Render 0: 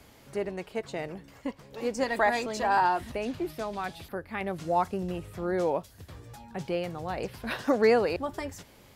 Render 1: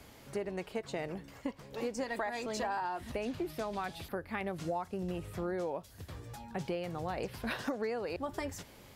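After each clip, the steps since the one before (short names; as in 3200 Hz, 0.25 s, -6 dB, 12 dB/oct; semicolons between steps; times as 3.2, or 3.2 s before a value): compressor 16:1, threshold -32 dBFS, peak gain reduction 15.5 dB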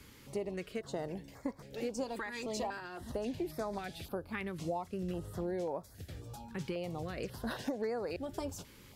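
stepped notch 3.7 Hz 690–2900 Hz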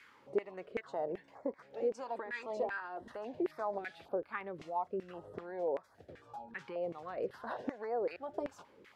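LFO band-pass saw down 2.6 Hz 390–2000 Hz; gain +7 dB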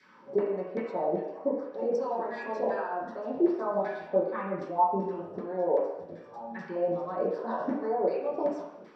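reverb RT60 0.85 s, pre-delay 3 ms, DRR -9 dB; gain -8 dB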